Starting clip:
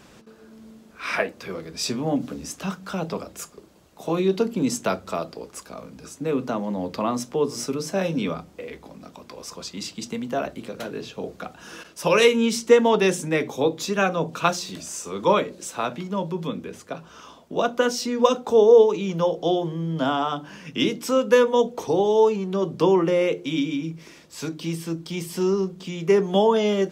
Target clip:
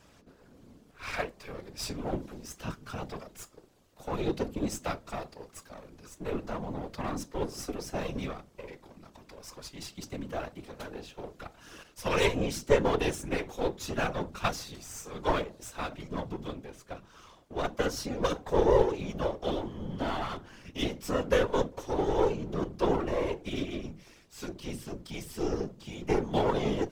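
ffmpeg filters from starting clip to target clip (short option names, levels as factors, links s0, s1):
-af "aeval=exprs='if(lt(val(0),0),0.251*val(0),val(0))':c=same,afftfilt=real='hypot(re,im)*cos(2*PI*random(0))':imag='hypot(re,im)*sin(2*PI*random(1))':win_size=512:overlap=0.75"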